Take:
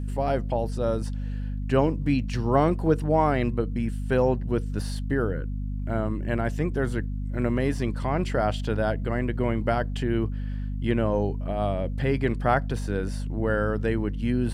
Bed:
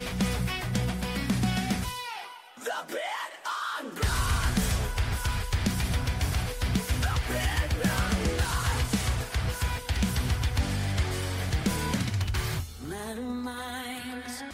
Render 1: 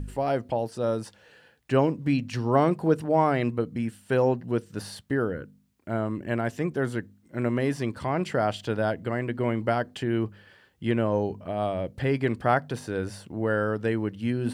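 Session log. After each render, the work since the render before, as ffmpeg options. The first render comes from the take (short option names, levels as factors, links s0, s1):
-af "bandreject=f=50:t=h:w=4,bandreject=f=100:t=h:w=4,bandreject=f=150:t=h:w=4,bandreject=f=200:t=h:w=4,bandreject=f=250:t=h:w=4"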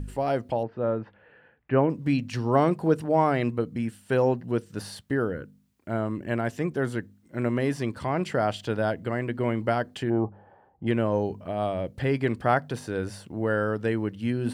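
-filter_complex "[0:a]asettb=1/sr,asplit=3[s0][s1][s2];[s0]atrim=end=0.634[s3];[s1]atrim=start=0.63:end=1.9,asetpts=PTS-STARTPTS,afade=t=in:d=0.004:c=qsin,afade=t=out:st=1.266:d=0.004:c=qsin,lowpass=f=2300:w=0.5412,lowpass=f=2300:w=1.3066[s4];[s2]atrim=start=1.896[s5];[s3][s4]acrossfade=d=0.004:c1=hsin:c2=qsin[s6];[s6][s5]acrossfade=d=0.004:c1=qsin:c2=hsin,asplit=3[s7][s8][s9];[s7]afade=t=out:st=10.09:d=0.02[s10];[s8]lowpass=f=800:t=q:w=6.4,afade=t=in:st=10.09:d=0.02,afade=t=out:st=10.86:d=0.02[s11];[s9]afade=t=in:st=10.86:d=0.02[s12];[s10][s11][s12]amix=inputs=3:normalize=0"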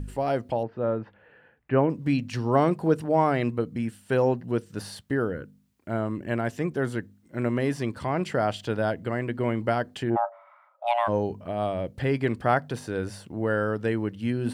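-filter_complex "[0:a]asplit=3[s0][s1][s2];[s0]afade=t=out:st=10.15:d=0.02[s3];[s1]afreqshift=480,afade=t=in:st=10.15:d=0.02,afade=t=out:st=11.07:d=0.02[s4];[s2]afade=t=in:st=11.07:d=0.02[s5];[s3][s4][s5]amix=inputs=3:normalize=0"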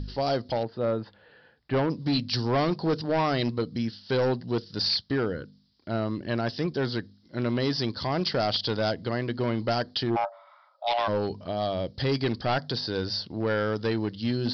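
-af "aexciter=amount=15.5:drive=3.5:freq=3800,aresample=11025,asoftclip=type=hard:threshold=0.0944,aresample=44100"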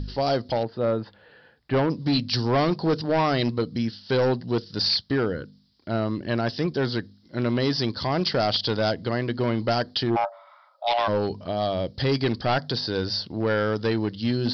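-af "volume=1.41"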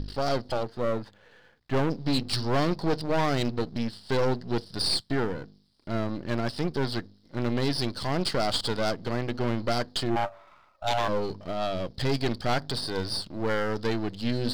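-af "aeval=exprs='if(lt(val(0),0),0.251*val(0),val(0))':c=same"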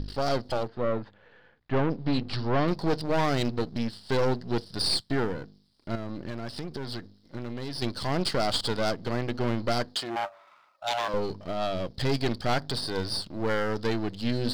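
-filter_complex "[0:a]asettb=1/sr,asplit=3[s0][s1][s2];[s0]atrim=end=0.684[s3];[s1]atrim=start=0.68:end=2.68,asetpts=PTS-STARTPTS,afade=t=in:d=0.004:c=qsin,afade=t=out:st=1.996:d=0.004:c=qsin,lowpass=3000[s4];[s2]atrim=start=2.676[s5];[s3][s4]acrossfade=d=0.004:c1=hsin:c2=qsin[s6];[s6][s5]acrossfade=d=0.004:c1=qsin:c2=hsin,asettb=1/sr,asplit=3[s7][s8][s9];[s7]atrim=end=5.954[s10];[s8]atrim=start=5.95:end=7.82,asetpts=PTS-STARTPTS,afade=t=in:d=0.004:c=qsin,afade=t=out:st=1.866:d=0.004:c=qsin,acompressor=threshold=0.0355:ratio=12:attack=3.2:release=140:knee=1:detection=peak[s11];[s9]atrim=start=7.816[s12];[s10][s11]acrossfade=d=0.004:c1=hsin:c2=qsin[s13];[s13][s12]acrossfade=d=0.004:c1=qsin:c2=hsin,asettb=1/sr,asplit=3[s14][s15][s16];[s14]atrim=end=9.954[s17];[s15]atrim=start=9.95:end=11.14,asetpts=PTS-STARTPTS,afade=t=in:d=0.004:c=qsin,afade=t=out:st=1.186:d=0.004:c=qsin,highpass=f=690:p=1[s18];[s16]atrim=start=11.136[s19];[s17][s18]acrossfade=d=0.004:c1=hsin:c2=qsin[s20];[s20][s19]acrossfade=d=0.004:c1=qsin:c2=hsin"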